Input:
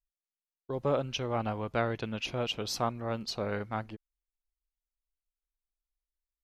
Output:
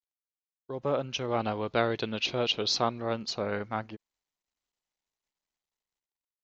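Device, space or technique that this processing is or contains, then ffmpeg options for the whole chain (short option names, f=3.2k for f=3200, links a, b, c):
Bluetooth headset: -filter_complex "[0:a]asettb=1/sr,asplit=3[a][b][c];[a]atrim=end=1.284[d];[b]atrim=start=1.28:end=3.14,asetpts=PTS-STARTPTS,afade=t=in:d=0.004:c=qsin,afade=t=out:st=1.856:d=0.004:c=qsin,equalizer=f=400:t=o:w=0.67:g=4,equalizer=f=4k:t=o:w=0.67:g=10,equalizer=f=10k:t=o:w=0.67:g=-9[e];[c]atrim=start=3.136[f];[d][e]acrossfade=d=0.004:c1=hsin:c2=qsin[g];[g][f]acrossfade=d=0.004:c1=qsin:c2=hsin,highpass=f=140:p=1,dynaudnorm=f=360:g=5:m=5.5dB,aresample=16000,aresample=44100,volume=-3dB" -ar 16000 -c:a sbc -b:a 64k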